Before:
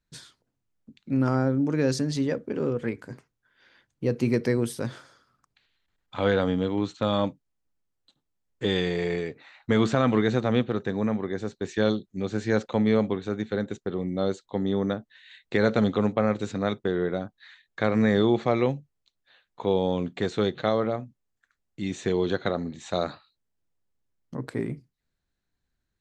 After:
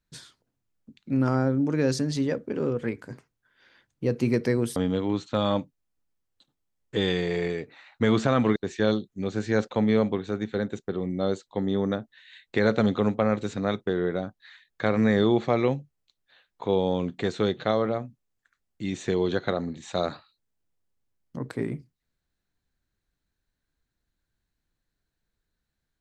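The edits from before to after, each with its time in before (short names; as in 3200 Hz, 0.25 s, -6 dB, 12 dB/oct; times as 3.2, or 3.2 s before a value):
4.76–6.44 cut
10.24–11.54 cut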